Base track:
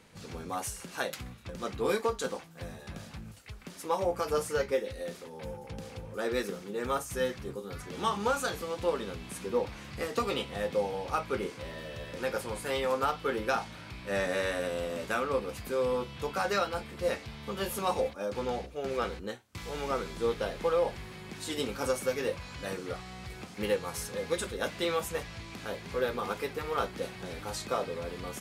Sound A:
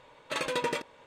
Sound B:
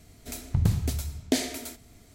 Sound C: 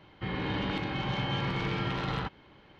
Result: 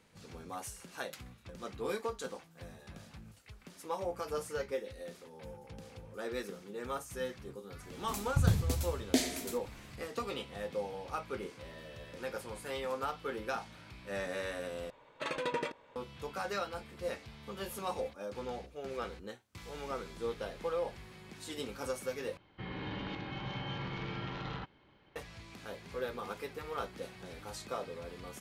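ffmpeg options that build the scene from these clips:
-filter_complex "[0:a]volume=0.422[s0];[1:a]highshelf=f=4600:g=-10.5[s1];[3:a]aresample=16000,aresample=44100[s2];[s0]asplit=3[s3][s4][s5];[s3]atrim=end=14.904[s6];[s1]atrim=end=1.06,asetpts=PTS-STARTPTS,volume=0.631[s7];[s4]atrim=start=15.956:end=22.374[s8];[s2]atrim=end=2.79,asetpts=PTS-STARTPTS,volume=0.376[s9];[s5]atrim=start=25.156[s10];[2:a]atrim=end=2.14,asetpts=PTS-STARTPTS,volume=0.631,afade=t=in:d=0.004:c=hsin,afade=t=out:st=2.136:d=0.004:c=hsin,adelay=7820[s11];[s6][s7]acrossfade=d=0.004:c1=hsin:c2=hsin[s12];[s12][s8]acrossfade=d=0.004:c1=hsin:c2=hsin[s13];[s13][s9]acrossfade=d=0.004:c1=hsin:c2=hsin[s14];[s14][s10]acrossfade=d=0.004:c1=hsin:c2=hsin[s15];[s15][s11]amix=inputs=2:normalize=0"

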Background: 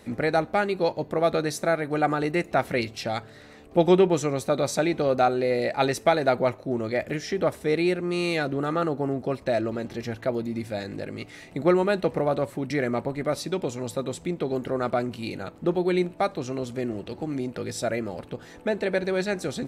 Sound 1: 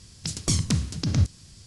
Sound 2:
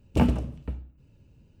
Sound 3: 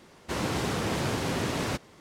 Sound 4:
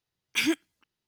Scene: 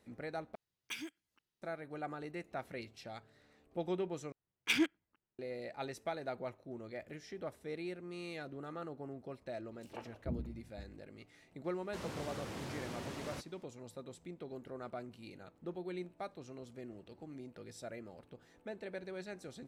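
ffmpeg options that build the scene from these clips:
-filter_complex "[4:a]asplit=2[s0][s1];[0:a]volume=0.112[s2];[s0]acompressor=threshold=0.02:ratio=12:attack=14:release=597:knee=1:detection=peak[s3];[s1]adynamicsmooth=sensitivity=3.5:basefreq=1900[s4];[2:a]acrossover=split=400|3700[s5][s6][s7];[s6]adelay=110[s8];[s5]adelay=440[s9];[s9][s8][s7]amix=inputs=3:normalize=0[s10];[3:a]asoftclip=type=tanh:threshold=0.0794[s11];[s2]asplit=3[s12][s13][s14];[s12]atrim=end=0.554[s15];[s3]atrim=end=1.07,asetpts=PTS-STARTPTS,volume=0.447[s16];[s13]atrim=start=1.616:end=4.324[s17];[s4]atrim=end=1.07,asetpts=PTS-STARTPTS,volume=0.562[s18];[s14]atrim=start=5.386[s19];[s10]atrim=end=1.6,asetpts=PTS-STARTPTS,volume=0.133,afade=t=in:d=0.004:c=hsin,afade=t=out:st=1.596:d=0.004:c=hsin,adelay=9660[s20];[s11]atrim=end=2,asetpts=PTS-STARTPTS,volume=0.2,afade=t=in:d=0.004:c=hsin,afade=t=out:st=1.996:d=0.004:c=hsin,adelay=11640[s21];[s15][s16]acrossfade=d=0.004:c1=hsin:c2=hsin[s22];[s22][s17]acrossfade=d=0.004:c1=hsin:c2=hsin[s23];[s23][s18]acrossfade=d=0.004:c1=hsin:c2=hsin[s24];[s24][s19]acrossfade=d=0.004:c1=hsin:c2=hsin[s25];[s25][s20][s21]amix=inputs=3:normalize=0"

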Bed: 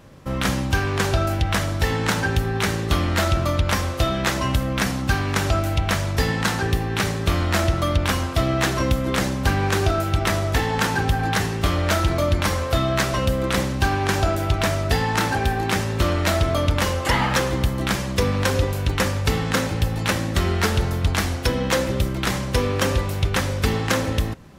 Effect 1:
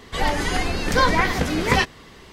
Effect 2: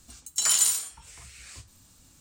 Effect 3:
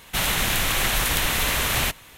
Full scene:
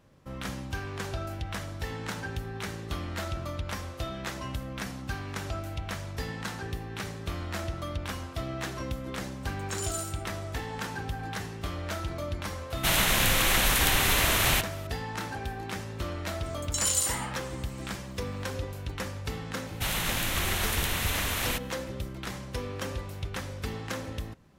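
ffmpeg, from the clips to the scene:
-filter_complex "[2:a]asplit=2[s0][s1];[3:a]asplit=2[s2][s3];[0:a]volume=0.2[s4];[s0]atrim=end=2.2,asetpts=PTS-STARTPTS,volume=0.188,afade=t=in:d=0.004:c=hsin,afade=t=out:st=2.196:d=0.004:c=hsin,adelay=9330[s5];[s2]atrim=end=2.17,asetpts=PTS-STARTPTS,volume=0.841,afade=t=in:d=0.004:c=hsin,afade=t=out:st=2.166:d=0.004:c=hsin,adelay=12700[s6];[s1]atrim=end=2.2,asetpts=PTS-STARTPTS,volume=0.562,afade=t=in:d=0.004:c=hsin,afade=t=out:st=2.196:d=0.004:c=hsin,adelay=721476S[s7];[s3]atrim=end=2.17,asetpts=PTS-STARTPTS,volume=0.422,afade=t=in:d=0.004:c=hsin,afade=t=out:st=2.166:d=0.004:c=hsin,adelay=19670[s8];[s4][s5][s6][s7][s8]amix=inputs=5:normalize=0"

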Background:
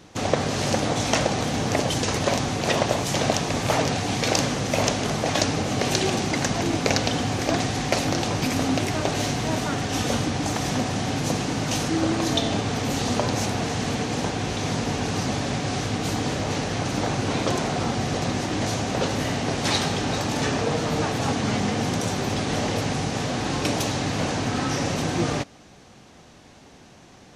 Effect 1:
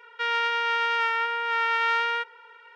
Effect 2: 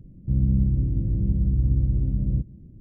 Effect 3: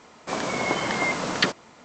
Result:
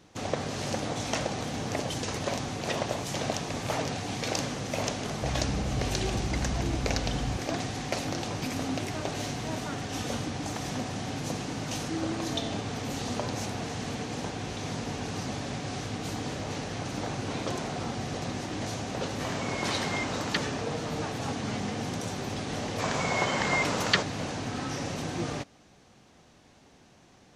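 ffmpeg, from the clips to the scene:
-filter_complex "[3:a]asplit=2[s0][s1];[0:a]volume=0.376[s2];[2:a]alimiter=limit=0.112:level=0:latency=1:release=71[s3];[s1]equalizer=f=290:t=o:w=0.39:g=-12.5[s4];[s3]atrim=end=2.8,asetpts=PTS-STARTPTS,volume=0.447,afade=t=in:d=0.004:c=hsin,afade=t=out:st=2.796:d=0.004:c=hsin,adelay=4950[s5];[s0]atrim=end=1.84,asetpts=PTS-STARTPTS,volume=0.376,afade=t=in:d=0.004:c=hsin,afade=t=out:st=1.836:d=0.004:c=hsin,adelay=834372S[s6];[s4]atrim=end=1.84,asetpts=PTS-STARTPTS,volume=0.794,afade=t=in:d=0.004:c=hsin,afade=t=out:st=1.836:d=0.004:c=hsin,adelay=22510[s7];[s2][s5][s6][s7]amix=inputs=4:normalize=0"

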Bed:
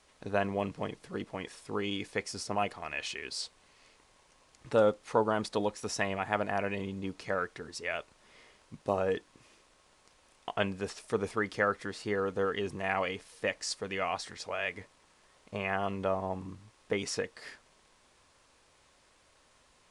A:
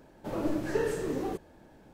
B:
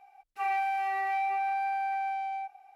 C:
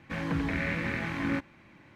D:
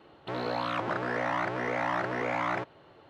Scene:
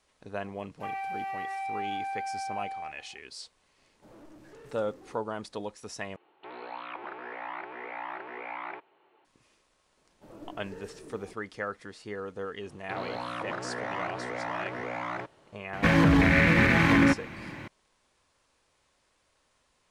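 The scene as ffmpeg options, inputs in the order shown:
-filter_complex "[1:a]asplit=2[s0][s1];[4:a]asplit=2[s2][s3];[0:a]volume=0.501[s4];[2:a]alimiter=level_in=1.19:limit=0.0631:level=0:latency=1:release=71,volume=0.841[s5];[s0]asoftclip=type=tanh:threshold=0.0251[s6];[s2]highpass=360,equalizer=f=380:t=q:w=4:g=6,equalizer=f=580:t=q:w=4:g=-6,equalizer=f=860:t=q:w=4:g=6,equalizer=f=2400:t=q:w=4:g=7,lowpass=f=3600:w=0.5412,lowpass=f=3600:w=1.3066[s7];[3:a]alimiter=level_in=18.8:limit=0.891:release=50:level=0:latency=1[s8];[s4]asplit=2[s9][s10];[s9]atrim=end=6.164[s11];[s7]atrim=end=3.09,asetpts=PTS-STARTPTS,volume=0.316[s12];[s10]atrim=start=9.246[s13];[s5]atrim=end=2.75,asetpts=PTS-STARTPTS,volume=0.631,afade=t=in:d=0.004:c=hsin,afade=t=out:st=2.746:d=0.004:c=hsin,adelay=440[s14];[s6]atrim=end=1.93,asetpts=PTS-STARTPTS,volume=0.158,afade=t=in:d=0.004:c=hsin,afade=t=out:st=1.926:d=0.004:c=hsin,adelay=3780[s15];[s1]atrim=end=1.93,asetpts=PTS-STARTPTS,volume=0.158,afade=t=in:d=0.004:c=hsin,afade=t=out:st=1.926:d=0.004:c=hsin,adelay=9970[s16];[s3]atrim=end=3.09,asetpts=PTS-STARTPTS,volume=0.596,afade=t=in:d=0.004:c=hsin,afade=t=out:st=3.086:d=0.004:c=hsin,adelay=12620[s17];[s8]atrim=end=1.95,asetpts=PTS-STARTPTS,volume=0.282,afade=t=in:d=0.004:c=hsin,afade=t=out:st=1.946:d=0.004:c=hsin,adelay=15730[s18];[s11][s12]acrossfade=d=0.004:c1=hsin:c2=hsin[s19];[s19][s13]acrossfade=d=0.004:c1=hsin:c2=hsin[s20];[s20][s14][s15][s16][s17][s18]amix=inputs=6:normalize=0"

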